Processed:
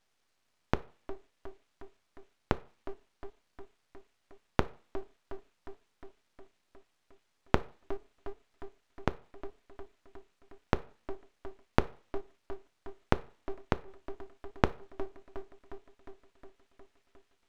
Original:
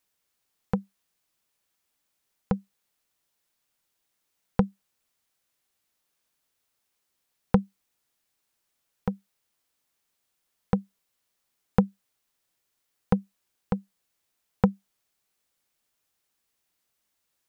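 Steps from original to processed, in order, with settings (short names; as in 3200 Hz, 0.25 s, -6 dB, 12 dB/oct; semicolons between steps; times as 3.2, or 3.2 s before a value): median filter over 9 samples; high shelf 2100 Hz +12 dB; in parallel at +1 dB: limiter -14 dBFS, peak gain reduction 10.5 dB; on the sum: tape echo 0.359 s, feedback 75%, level -18 dB, low-pass 2900 Hz; flipped gate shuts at -16 dBFS, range -32 dB; air absorption 99 m; on a send at -13.5 dB: reverb RT60 0.45 s, pre-delay 3 ms; on the sum: full-wave rectifier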